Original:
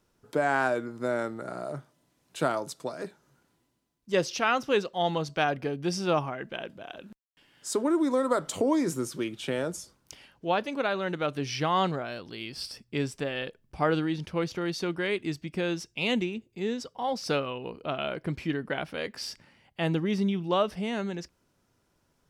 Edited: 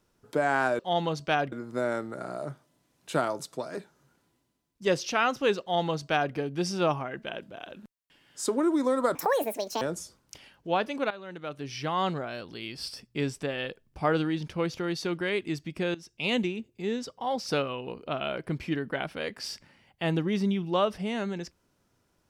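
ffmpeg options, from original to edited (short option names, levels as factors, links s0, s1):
-filter_complex "[0:a]asplit=7[s0][s1][s2][s3][s4][s5][s6];[s0]atrim=end=0.792[s7];[s1]atrim=start=4.878:end=5.612[s8];[s2]atrim=start=0.788:end=8.424[s9];[s3]atrim=start=8.42:end=9.59,asetpts=PTS-STARTPTS,asetrate=77616,aresample=44100,atrim=end_sample=29316,asetpts=PTS-STARTPTS[s10];[s4]atrim=start=9.586:end=10.88,asetpts=PTS-STARTPTS,afade=t=out:st=1.29:d=0.004:c=hsin:silence=0.177828[s11];[s5]atrim=start=10.88:end=15.72,asetpts=PTS-STARTPTS,afade=t=in:d=1.3:silence=0.177828,afade=t=out:st=4.836:d=0.004:c=hsin:silence=0.112202[s12];[s6]atrim=start=15.72,asetpts=PTS-STARTPTS,afade=t=in:d=0.31:silence=0.112202[s13];[s7][s8]acrossfade=d=0.004:c1=hsin:c2=hsin[s14];[s14][s9]acrossfade=d=0.004:c1=hsin:c2=hsin[s15];[s15][s10]acrossfade=d=0.004:c1=hsin:c2=hsin[s16];[s11][s12][s13]concat=n=3:v=0:a=1[s17];[s16][s17]acrossfade=d=0.004:c1=hsin:c2=hsin"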